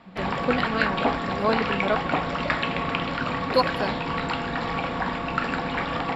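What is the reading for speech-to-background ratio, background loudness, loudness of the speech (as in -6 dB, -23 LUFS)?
-1.5 dB, -26.5 LUFS, -28.0 LUFS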